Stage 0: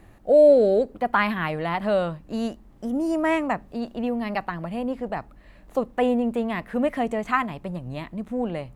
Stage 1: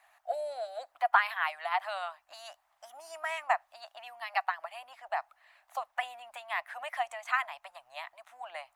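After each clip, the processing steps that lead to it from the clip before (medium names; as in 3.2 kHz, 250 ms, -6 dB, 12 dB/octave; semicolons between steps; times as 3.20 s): harmonic-percussive split harmonic -11 dB; elliptic high-pass 690 Hz, stop band 40 dB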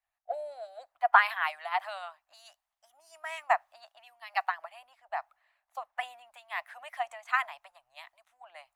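three bands expanded up and down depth 70%; trim -2 dB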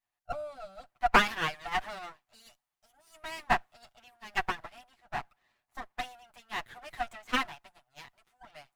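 comb filter that takes the minimum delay 8.2 ms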